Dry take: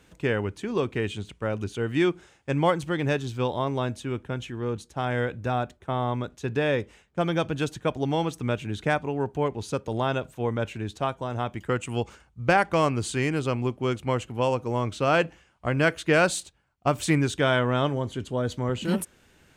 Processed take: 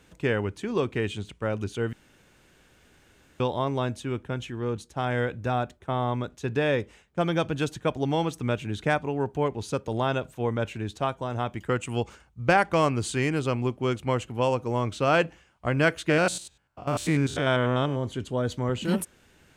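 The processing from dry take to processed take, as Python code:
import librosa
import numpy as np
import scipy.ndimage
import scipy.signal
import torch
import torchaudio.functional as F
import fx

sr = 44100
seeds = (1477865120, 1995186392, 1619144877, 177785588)

y = fx.spec_steps(x, sr, hold_ms=100, at=(16.09, 18.02), fade=0.02)
y = fx.edit(y, sr, fx.room_tone_fill(start_s=1.93, length_s=1.47), tone=tone)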